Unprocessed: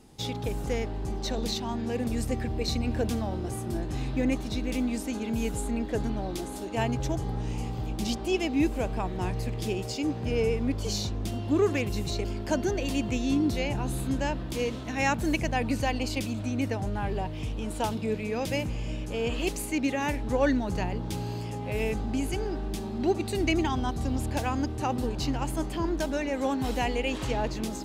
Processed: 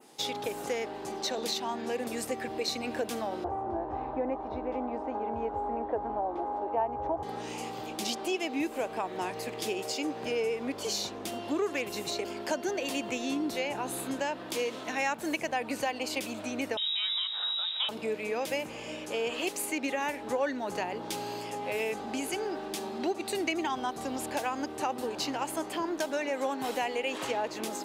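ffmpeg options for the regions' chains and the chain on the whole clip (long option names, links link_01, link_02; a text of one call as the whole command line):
ffmpeg -i in.wav -filter_complex "[0:a]asettb=1/sr,asplit=3[link_01][link_02][link_03];[link_01]atrim=end=3.444[link_04];[link_02]atrim=start=3.44:end=7.23,asetpts=PTS-STARTPTS,afade=type=in:duration=0.004:curve=qsin,afade=type=out:start_time=3.786:duration=0.004:curve=qsin,lowpass=frequency=890:width_type=q:width=2.6,lowshelf=frequency=110:width_type=q:width=3:gain=12[link_05];[link_03]atrim=start=7.226[link_06];[link_04][link_05]acrossfade=duration=0.004:curve1=hsin:curve2=qsin[link_07];[link_07][link_06]acrossfade=duration=0.004:curve1=qsin:curve2=hsin,asettb=1/sr,asplit=3[link_08][link_09][link_10];[link_08]atrim=end=16.774[link_11];[link_09]atrim=start=16.77:end=17.89,asetpts=PTS-STARTPTS,afade=type=in:duration=0.004:curve=qsin,afade=type=out:start_time=1.116:duration=0.004:curve=qsin,lowpass=frequency=3300:width_type=q:width=0.5098,lowpass=frequency=3300:width_type=q:width=0.6013,lowpass=frequency=3300:width_type=q:width=0.9,lowpass=frequency=3300:width_type=q:width=2.563,afreqshift=-3900,highpass=frequency=230:width=0.5412,highpass=frequency=230:width=1.3066[link_12];[link_10]atrim=start=17.886[link_13];[link_11][link_12]acrossfade=duration=0.004:curve1=hsin:curve2=qsin[link_14];[link_14][link_13]acrossfade=duration=0.004:curve1=qsin:curve2=hsin,highpass=430,adynamicequalizer=threshold=0.00316:dfrequency=4900:dqfactor=0.85:tfrequency=4900:tqfactor=0.85:attack=5:release=100:ratio=0.375:range=2:mode=cutabove:tftype=bell,acompressor=threshold=-34dB:ratio=2.5,volume=4.5dB" out.wav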